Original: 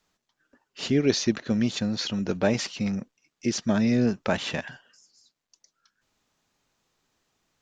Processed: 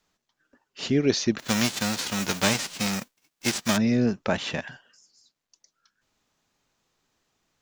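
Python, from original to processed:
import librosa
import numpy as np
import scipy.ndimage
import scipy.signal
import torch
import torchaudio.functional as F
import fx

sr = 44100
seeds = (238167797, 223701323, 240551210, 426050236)

y = fx.envelope_flatten(x, sr, power=0.3, at=(1.38, 3.76), fade=0.02)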